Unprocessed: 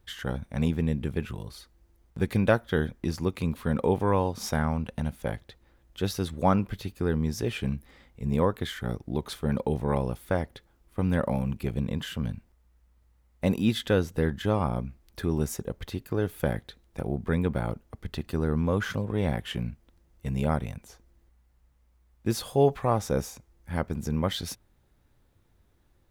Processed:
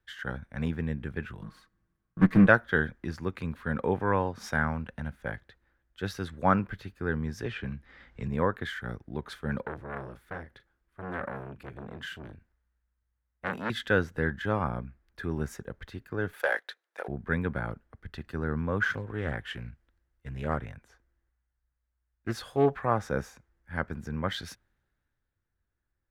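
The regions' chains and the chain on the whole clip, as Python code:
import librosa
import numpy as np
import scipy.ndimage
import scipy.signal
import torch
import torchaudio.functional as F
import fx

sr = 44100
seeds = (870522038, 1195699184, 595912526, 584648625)

y = fx.chain(x, sr, fx.lower_of_two(delay_ms=6.3),
    fx.small_body(hz=(200.0, 1100.0), ring_ms=35, db=12), at=(1.41, 2.47))
y = fx.chain(y, sr, fx.lowpass(hz=5600.0, slope=12),
    fx.band_squash(depth_pct=100), at=(7.45, 8.28))
y = fx.chain(y, sr, fx.doubler(ms=38.0, db=-12.5),
    fx.transformer_sat(knee_hz=1500.0), at=(9.61, 13.7))
y = fx.chain(y, sr, fx.highpass(hz=470.0, slope=24),
    fx.leveller(passes=2), at=(16.33, 17.08))
y = fx.chain(y, sr, fx.peak_eq(hz=190.0, db=-9.0, octaves=0.28),
    fx.doppler_dist(depth_ms=0.26), at=(18.91, 22.75))
y = fx.lowpass(y, sr, hz=3800.0, slope=6)
y = fx.peak_eq(y, sr, hz=1600.0, db=12.5, octaves=0.73)
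y = fx.band_widen(y, sr, depth_pct=40)
y = y * librosa.db_to_amplitude(-5.0)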